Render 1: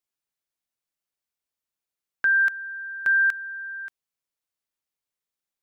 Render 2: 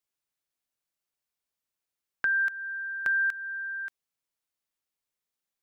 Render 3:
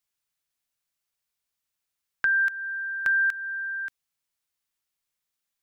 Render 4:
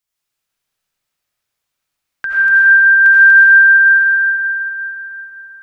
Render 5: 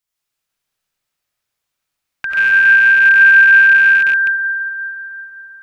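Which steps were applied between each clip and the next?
compressor 2:1, threshold -29 dBFS, peak gain reduction 6 dB
bell 410 Hz -6.5 dB 2.3 oct; gain +4.5 dB
reverb RT60 5.2 s, pre-delay 45 ms, DRR -9.5 dB; gain +1.5 dB
rattling part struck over -46 dBFS, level -13 dBFS; gain -1 dB

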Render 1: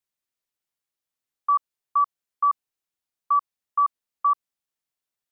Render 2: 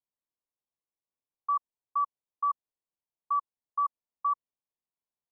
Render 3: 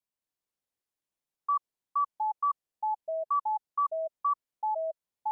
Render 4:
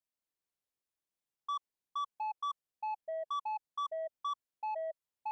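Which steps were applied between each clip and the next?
elliptic low-pass 1100 Hz; gain -4 dB
echoes that change speed 0.216 s, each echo -5 st, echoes 2
soft clip -28.5 dBFS, distortion -14 dB; gain -4 dB

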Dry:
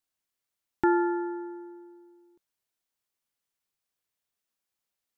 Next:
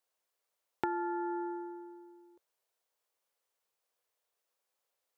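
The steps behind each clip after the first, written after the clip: graphic EQ 125/250/500/1000 Hz -9/-9/+11/+4 dB; compressor 10:1, threshold -31 dBFS, peak gain reduction 15 dB; HPF 71 Hz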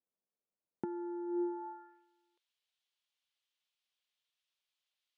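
band-pass sweep 210 Hz -> 3300 Hz, 1.26–2.08; gain +6 dB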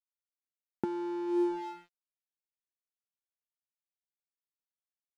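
crossover distortion -53.5 dBFS; gain +7 dB

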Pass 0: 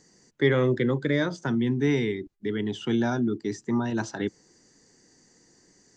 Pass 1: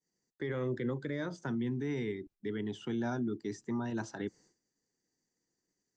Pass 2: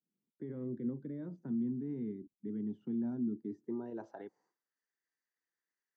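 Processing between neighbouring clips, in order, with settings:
expander -48 dBFS; dynamic EQ 3600 Hz, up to -4 dB, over -43 dBFS, Q 0.94; limiter -19 dBFS, peak gain reduction 9.5 dB; gain -8 dB
band-pass sweep 220 Hz -> 1600 Hz, 3.41–4.8; gain +1.5 dB

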